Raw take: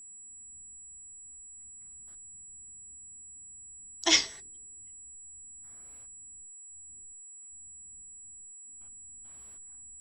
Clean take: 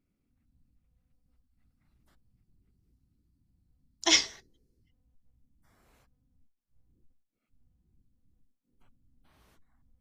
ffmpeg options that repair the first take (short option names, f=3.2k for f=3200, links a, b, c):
-af "bandreject=f=7.8k:w=30"